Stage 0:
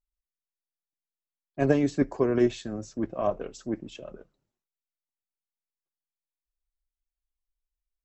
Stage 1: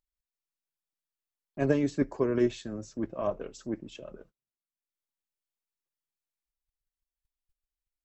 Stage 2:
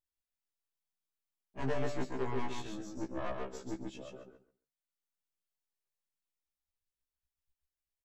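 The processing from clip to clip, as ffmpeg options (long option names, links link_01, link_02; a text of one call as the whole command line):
ffmpeg -i in.wav -af "bandreject=frequency=730:width=12,acompressor=mode=upward:threshold=-36dB:ratio=2.5,agate=range=-31dB:threshold=-52dB:ratio=16:detection=peak,volume=-3dB" out.wav
ffmpeg -i in.wav -filter_complex "[0:a]aeval=exprs='(tanh(31.6*val(0)+0.7)-tanh(0.7))/31.6':channel_layout=same,asplit=2[link_01][link_02];[link_02]aecho=0:1:137|274|411:0.631|0.114|0.0204[link_03];[link_01][link_03]amix=inputs=2:normalize=0,afftfilt=real='re*1.73*eq(mod(b,3),0)':imag='im*1.73*eq(mod(b,3),0)':win_size=2048:overlap=0.75,volume=1.5dB" out.wav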